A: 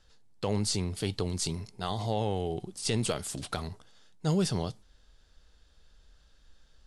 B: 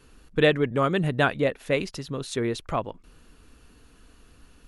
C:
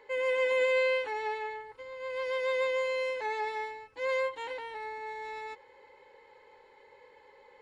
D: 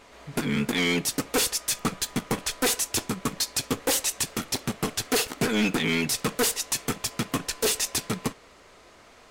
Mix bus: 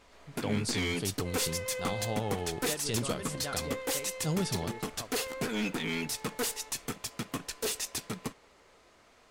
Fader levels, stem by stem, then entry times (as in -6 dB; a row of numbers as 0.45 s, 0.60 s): -4.0 dB, -18.5 dB, -11.5 dB, -8.5 dB; 0.00 s, 2.25 s, 1.15 s, 0.00 s